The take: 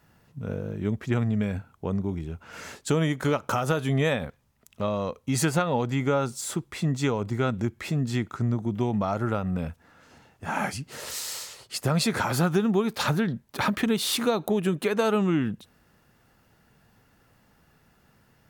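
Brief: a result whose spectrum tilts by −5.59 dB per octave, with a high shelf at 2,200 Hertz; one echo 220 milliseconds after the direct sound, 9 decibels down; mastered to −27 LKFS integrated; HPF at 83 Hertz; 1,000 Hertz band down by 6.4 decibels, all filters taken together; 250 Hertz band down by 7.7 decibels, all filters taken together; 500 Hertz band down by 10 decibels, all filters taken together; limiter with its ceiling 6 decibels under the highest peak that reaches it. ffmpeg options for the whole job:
ffmpeg -i in.wav -af "highpass=83,equalizer=frequency=250:width_type=o:gain=-8.5,equalizer=frequency=500:width_type=o:gain=-8.5,equalizer=frequency=1000:width_type=o:gain=-3.5,highshelf=frequency=2200:gain=-8.5,alimiter=limit=-24dB:level=0:latency=1,aecho=1:1:220:0.355,volume=7.5dB" out.wav

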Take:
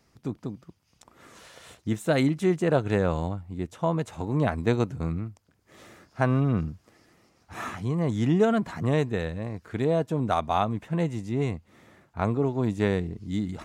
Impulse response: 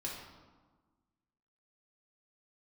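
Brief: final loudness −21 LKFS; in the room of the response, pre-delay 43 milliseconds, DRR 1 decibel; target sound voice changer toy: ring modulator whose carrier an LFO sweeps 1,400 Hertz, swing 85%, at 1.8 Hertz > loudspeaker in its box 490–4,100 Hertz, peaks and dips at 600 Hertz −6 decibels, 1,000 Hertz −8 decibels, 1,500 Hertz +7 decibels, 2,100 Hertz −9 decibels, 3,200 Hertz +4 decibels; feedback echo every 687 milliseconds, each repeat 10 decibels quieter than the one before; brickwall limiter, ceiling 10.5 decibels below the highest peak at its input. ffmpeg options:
-filter_complex "[0:a]alimiter=limit=-20dB:level=0:latency=1,aecho=1:1:687|1374|2061|2748:0.316|0.101|0.0324|0.0104,asplit=2[link_01][link_02];[1:a]atrim=start_sample=2205,adelay=43[link_03];[link_02][link_03]afir=irnorm=-1:irlink=0,volume=-1.5dB[link_04];[link_01][link_04]amix=inputs=2:normalize=0,aeval=exprs='val(0)*sin(2*PI*1400*n/s+1400*0.85/1.8*sin(2*PI*1.8*n/s))':channel_layout=same,highpass=490,equalizer=frequency=600:width_type=q:width=4:gain=-6,equalizer=frequency=1000:width_type=q:width=4:gain=-8,equalizer=frequency=1500:width_type=q:width=4:gain=7,equalizer=frequency=2100:width_type=q:width=4:gain=-9,equalizer=frequency=3200:width_type=q:width=4:gain=4,lowpass=frequency=4100:width=0.5412,lowpass=frequency=4100:width=1.3066,volume=9dB"

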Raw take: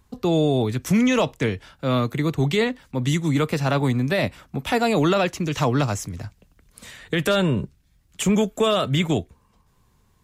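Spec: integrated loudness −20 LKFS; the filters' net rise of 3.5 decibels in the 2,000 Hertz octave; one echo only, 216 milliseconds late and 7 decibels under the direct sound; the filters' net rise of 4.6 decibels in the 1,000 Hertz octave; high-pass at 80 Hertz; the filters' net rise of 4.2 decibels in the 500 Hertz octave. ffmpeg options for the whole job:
ffmpeg -i in.wav -af "highpass=80,equalizer=frequency=500:width_type=o:gain=4,equalizer=frequency=1000:width_type=o:gain=4,equalizer=frequency=2000:width_type=o:gain=3,aecho=1:1:216:0.447,volume=-0.5dB" out.wav

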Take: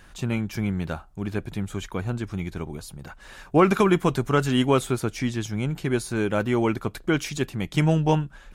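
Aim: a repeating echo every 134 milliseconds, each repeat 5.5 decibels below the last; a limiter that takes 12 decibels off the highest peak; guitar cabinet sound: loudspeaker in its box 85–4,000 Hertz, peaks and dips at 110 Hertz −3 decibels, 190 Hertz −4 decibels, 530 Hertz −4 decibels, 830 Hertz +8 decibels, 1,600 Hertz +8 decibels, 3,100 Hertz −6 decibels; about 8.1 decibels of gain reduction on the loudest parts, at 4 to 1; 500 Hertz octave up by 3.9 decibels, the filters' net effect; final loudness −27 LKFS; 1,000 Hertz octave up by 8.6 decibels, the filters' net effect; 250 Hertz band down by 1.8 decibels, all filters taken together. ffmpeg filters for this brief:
ffmpeg -i in.wav -af "equalizer=frequency=250:width_type=o:gain=-4.5,equalizer=frequency=500:width_type=o:gain=7.5,equalizer=frequency=1000:width_type=o:gain=3.5,acompressor=threshold=-19dB:ratio=4,alimiter=limit=-20.5dB:level=0:latency=1,highpass=85,equalizer=frequency=110:width_type=q:width=4:gain=-3,equalizer=frequency=190:width_type=q:width=4:gain=-4,equalizer=frequency=530:width_type=q:width=4:gain=-4,equalizer=frequency=830:width_type=q:width=4:gain=8,equalizer=frequency=1600:width_type=q:width=4:gain=8,equalizer=frequency=3100:width_type=q:width=4:gain=-6,lowpass=frequency=4000:width=0.5412,lowpass=frequency=4000:width=1.3066,aecho=1:1:134|268|402|536|670|804|938:0.531|0.281|0.149|0.079|0.0419|0.0222|0.0118,volume=3.5dB" out.wav

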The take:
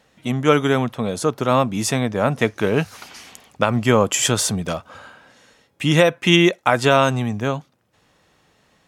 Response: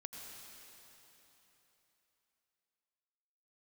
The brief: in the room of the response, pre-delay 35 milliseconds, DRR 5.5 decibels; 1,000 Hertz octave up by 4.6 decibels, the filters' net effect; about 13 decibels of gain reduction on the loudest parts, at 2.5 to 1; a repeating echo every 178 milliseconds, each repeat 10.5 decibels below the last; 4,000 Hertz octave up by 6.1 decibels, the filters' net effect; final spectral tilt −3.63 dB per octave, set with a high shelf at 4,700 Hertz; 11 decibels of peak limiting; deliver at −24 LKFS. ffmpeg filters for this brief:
-filter_complex "[0:a]equalizer=frequency=1000:width_type=o:gain=5.5,equalizer=frequency=4000:width_type=o:gain=6,highshelf=frequency=4700:gain=4,acompressor=threshold=-27dB:ratio=2.5,alimiter=limit=-17.5dB:level=0:latency=1,aecho=1:1:178|356|534:0.299|0.0896|0.0269,asplit=2[link_01][link_02];[1:a]atrim=start_sample=2205,adelay=35[link_03];[link_02][link_03]afir=irnorm=-1:irlink=0,volume=-2.5dB[link_04];[link_01][link_04]amix=inputs=2:normalize=0,volume=5dB"

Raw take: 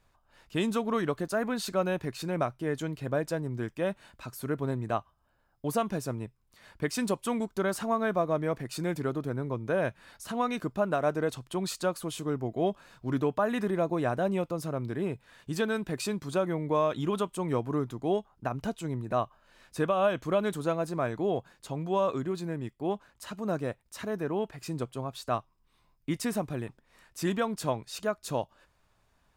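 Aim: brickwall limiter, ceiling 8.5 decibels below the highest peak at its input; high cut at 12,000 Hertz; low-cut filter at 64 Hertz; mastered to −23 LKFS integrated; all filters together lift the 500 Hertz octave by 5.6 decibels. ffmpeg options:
ffmpeg -i in.wav -af "highpass=64,lowpass=12000,equalizer=frequency=500:width_type=o:gain=7,volume=8dB,alimiter=limit=-11.5dB:level=0:latency=1" out.wav

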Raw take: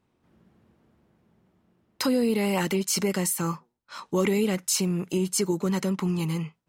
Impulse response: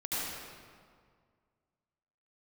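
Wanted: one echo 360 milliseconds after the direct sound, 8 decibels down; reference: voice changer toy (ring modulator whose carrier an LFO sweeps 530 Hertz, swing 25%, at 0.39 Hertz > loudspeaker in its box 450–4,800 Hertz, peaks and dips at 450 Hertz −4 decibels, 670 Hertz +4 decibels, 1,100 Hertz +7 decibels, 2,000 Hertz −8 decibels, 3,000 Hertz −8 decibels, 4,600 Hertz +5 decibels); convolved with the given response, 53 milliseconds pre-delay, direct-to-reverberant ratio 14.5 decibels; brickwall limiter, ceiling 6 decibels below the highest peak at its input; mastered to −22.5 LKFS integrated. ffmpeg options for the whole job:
-filter_complex "[0:a]alimiter=limit=-18dB:level=0:latency=1,aecho=1:1:360:0.398,asplit=2[link_01][link_02];[1:a]atrim=start_sample=2205,adelay=53[link_03];[link_02][link_03]afir=irnorm=-1:irlink=0,volume=-20.5dB[link_04];[link_01][link_04]amix=inputs=2:normalize=0,aeval=exprs='val(0)*sin(2*PI*530*n/s+530*0.25/0.39*sin(2*PI*0.39*n/s))':channel_layout=same,highpass=450,equalizer=frequency=450:width_type=q:width=4:gain=-4,equalizer=frequency=670:width_type=q:width=4:gain=4,equalizer=frequency=1100:width_type=q:width=4:gain=7,equalizer=frequency=2000:width_type=q:width=4:gain=-8,equalizer=frequency=3000:width_type=q:width=4:gain=-8,equalizer=frequency=4600:width_type=q:width=4:gain=5,lowpass=frequency=4800:width=0.5412,lowpass=frequency=4800:width=1.3066,volume=7.5dB"

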